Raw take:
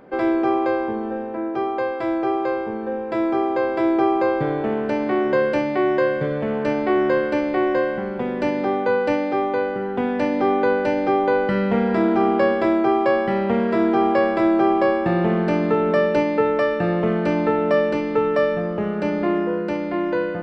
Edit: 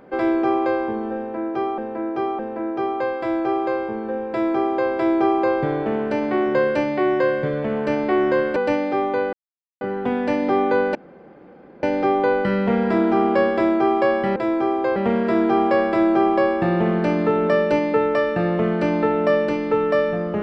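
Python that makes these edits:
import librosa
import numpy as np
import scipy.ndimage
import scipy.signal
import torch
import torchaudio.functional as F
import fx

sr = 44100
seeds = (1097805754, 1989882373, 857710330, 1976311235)

y = fx.edit(x, sr, fx.repeat(start_s=1.17, length_s=0.61, count=3),
    fx.duplicate(start_s=3.08, length_s=0.6, to_s=13.4),
    fx.cut(start_s=7.34, length_s=1.62),
    fx.insert_silence(at_s=9.73, length_s=0.48),
    fx.insert_room_tone(at_s=10.87, length_s=0.88), tone=tone)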